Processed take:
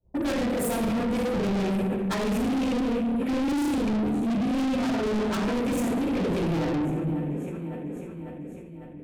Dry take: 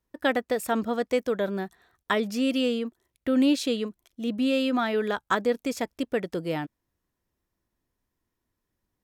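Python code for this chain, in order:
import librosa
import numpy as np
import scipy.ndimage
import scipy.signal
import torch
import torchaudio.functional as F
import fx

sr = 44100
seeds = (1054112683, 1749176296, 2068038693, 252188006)

p1 = fx.rattle_buzz(x, sr, strikes_db=-33.0, level_db=-18.0)
p2 = fx.over_compress(p1, sr, threshold_db=-34.0, ratio=-1.0)
p3 = p1 + (p2 * 10.0 ** (-2.0 / 20.0))
p4 = fx.room_shoebox(p3, sr, seeds[0], volume_m3=580.0, walls='mixed', distance_m=7.8)
p5 = fx.transient(p4, sr, attack_db=7, sustain_db=2)
p6 = fx.low_shelf(p5, sr, hz=350.0, db=9.5)
p7 = fx.env_phaser(p6, sr, low_hz=210.0, high_hz=4900.0, full_db=-15.0)
p8 = fx.highpass(p7, sr, hz=140.0, slope=6)
p9 = fx.env_lowpass(p8, sr, base_hz=620.0, full_db=-19.0)
p10 = p9 + fx.echo_feedback(p9, sr, ms=550, feedback_pct=58, wet_db=-19.0, dry=0)
p11 = 10.0 ** (-15.5 / 20.0) * np.tanh(p10 / 10.0 ** (-15.5 / 20.0))
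p12 = fx.peak_eq(p11, sr, hz=1500.0, db=-6.5, octaves=2.6)
p13 = fx.sustainer(p12, sr, db_per_s=28.0)
y = p13 * 10.0 ** (-7.5 / 20.0)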